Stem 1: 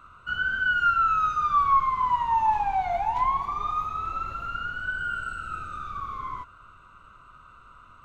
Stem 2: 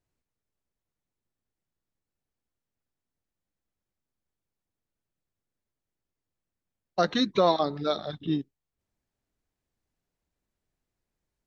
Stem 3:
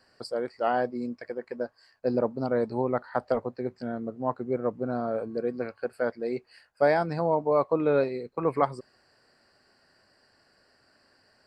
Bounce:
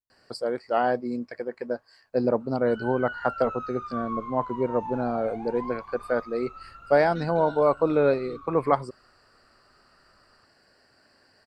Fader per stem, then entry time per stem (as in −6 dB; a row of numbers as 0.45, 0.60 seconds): −13.5, −19.5, +2.5 decibels; 2.40, 0.00, 0.10 seconds